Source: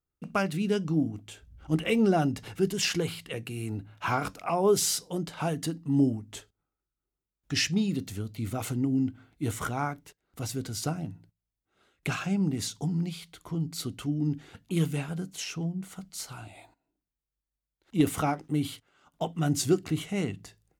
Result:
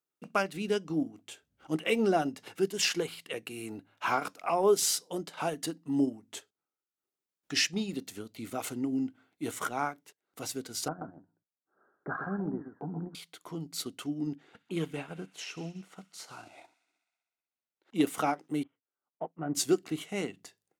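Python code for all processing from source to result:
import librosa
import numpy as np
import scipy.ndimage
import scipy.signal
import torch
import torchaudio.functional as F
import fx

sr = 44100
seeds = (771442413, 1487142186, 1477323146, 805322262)

y = fx.chain(x, sr, fx.steep_lowpass(hz=1700.0, slope=96),
    fx.echo_single(ms=129, db=-7.0), at=(10.88, 13.15))
y = fx.chain(y, sr, fx.lowpass(hz=2600.0, slope=6),
    fx.echo_wet_highpass(ms=63, feedback_pct=74, hz=1500.0, wet_db=-13.5), at=(14.35, 17.96))
y = fx.chain(y, sr, fx.law_mismatch(coded='A'),
    fx.gaussian_blur(sigma=5.2),
    fx.upward_expand(threshold_db=-48.0, expansion=1.5), at=(18.63, 19.55))
y = scipy.signal.sosfilt(scipy.signal.butter(2, 290.0, 'highpass', fs=sr, output='sos'), y)
y = fx.transient(y, sr, attack_db=0, sustain_db=-6)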